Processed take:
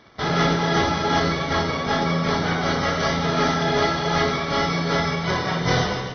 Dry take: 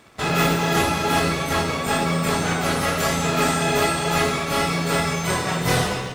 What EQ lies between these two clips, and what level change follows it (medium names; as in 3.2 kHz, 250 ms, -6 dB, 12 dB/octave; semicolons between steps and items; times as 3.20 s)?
Butterworth band-stop 2.6 kHz, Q 7; brick-wall FIR low-pass 6.2 kHz; 0.0 dB